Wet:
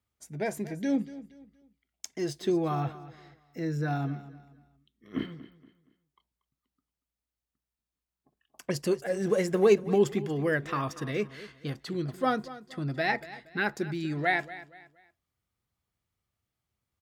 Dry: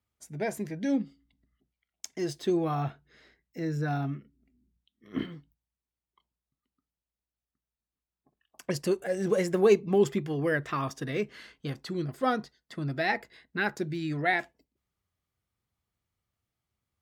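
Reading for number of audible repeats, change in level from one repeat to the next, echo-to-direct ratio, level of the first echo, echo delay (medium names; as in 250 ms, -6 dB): 2, -9.5 dB, -16.0 dB, -16.5 dB, 235 ms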